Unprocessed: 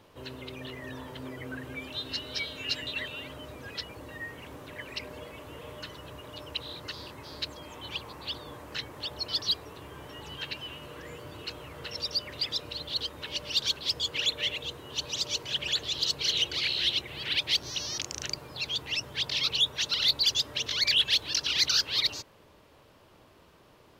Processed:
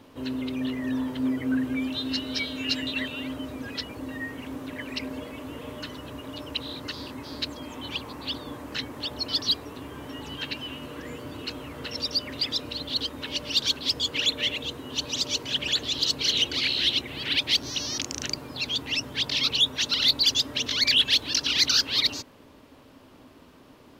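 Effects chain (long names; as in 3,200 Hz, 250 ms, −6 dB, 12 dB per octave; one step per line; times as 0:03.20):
parametric band 260 Hz +14.5 dB 0.33 octaves
level +3.5 dB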